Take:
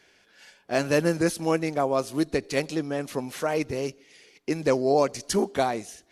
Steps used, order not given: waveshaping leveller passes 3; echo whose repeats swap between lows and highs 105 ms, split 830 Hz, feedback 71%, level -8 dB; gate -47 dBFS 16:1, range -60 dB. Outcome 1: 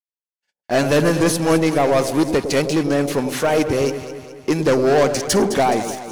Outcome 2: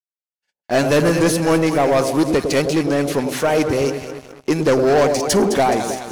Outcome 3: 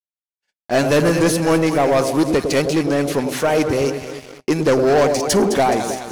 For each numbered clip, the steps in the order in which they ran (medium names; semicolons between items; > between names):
gate > waveshaping leveller > echo whose repeats swap between lows and highs; gate > echo whose repeats swap between lows and highs > waveshaping leveller; echo whose repeats swap between lows and highs > gate > waveshaping leveller